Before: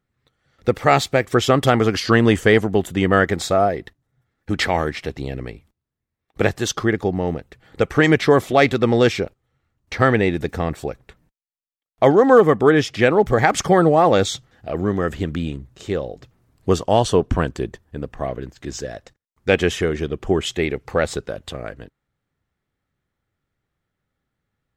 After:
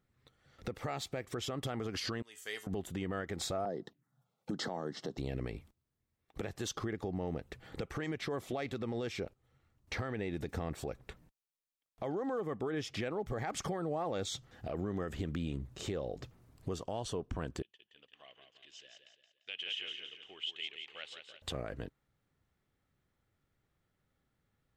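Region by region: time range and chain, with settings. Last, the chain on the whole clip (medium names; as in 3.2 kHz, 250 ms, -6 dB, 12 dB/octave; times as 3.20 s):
2.22–2.67 s: differentiator + feedback comb 85 Hz, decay 0.26 s, harmonics odd, mix 70%
3.65–5.18 s: high-pass 160 Hz 24 dB/octave + tone controls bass +3 dB, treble -2 dB + touch-sensitive phaser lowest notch 270 Hz, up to 2.4 kHz, full sweep at -24.5 dBFS
17.62–21.42 s: band-pass filter 3 kHz, Q 9.3 + feedback delay 172 ms, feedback 41%, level -7 dB
whole clip: peaking EQ 1.7 kHz -2 dB; compression 10:1, threshold -29 dBFS; peak limiter -26.5 dBFS; trim -1.5 dB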